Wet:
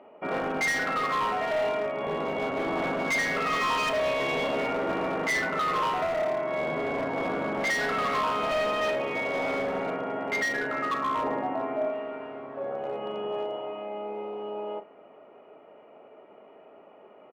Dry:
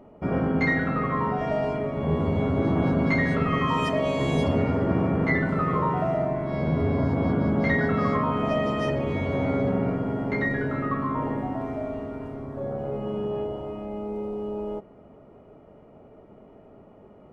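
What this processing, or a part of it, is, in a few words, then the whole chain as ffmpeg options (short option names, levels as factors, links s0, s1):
megaphone: -filter_complex "[0:a]highpass=500,lowpass=2600,equalizer=f=2700:t=o:w=0.59:g=9,asoftclip=type=hard:threshold=0.0447,asplit=2[s0][s1];[s1]adelay=37,volume=0.224[s2];[s0][s2]amix=inputs=2:normalize=0,asettb=1/sr,asplit=3[s3][s4][s5];[s3]atrim=end=11.234[s6];[s4]atrim=start=11.23:end=11.9,asetpts=PTS-STARTPTS,afade=t=in:d=0.004:c=qsin,afade=t=out:st=0.666:d=0.004:c=qsin,tiltshelf=f=1400:g=4[s7];[s5]atrim=start=11.896[s8];[s6][s7]acrossfade=d=0.004:c1=hsin:c2=qsin[s9];[s9][s8]acrossfade=d=0.004:c1=qsin:c2=hsin,volume=1.41"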